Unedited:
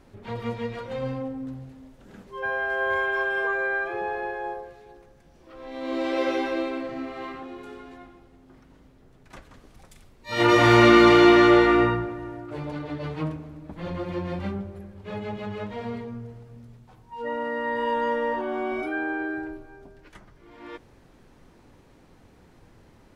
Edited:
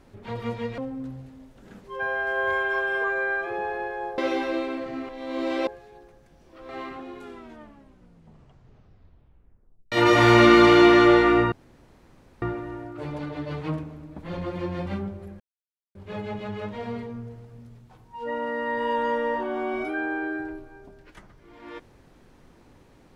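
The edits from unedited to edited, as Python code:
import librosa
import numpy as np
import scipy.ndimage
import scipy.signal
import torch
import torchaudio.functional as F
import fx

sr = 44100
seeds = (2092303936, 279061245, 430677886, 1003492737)

y = fx.edit(x, sr, fx.cut(start_s=0.78, length_s=0.43),
    fx.swap(start_s=4.61, length_s=1.02, other_s=6.21, other_length_s=0.91),
    fx.tape_stop(start_s=7.65, length_s=2.7),
    fx.insert_room_tone(at_s=11.95, length_s=0.9),
    fx.insert_silence(at_s=14.93, length_s=0.55), tone=tone)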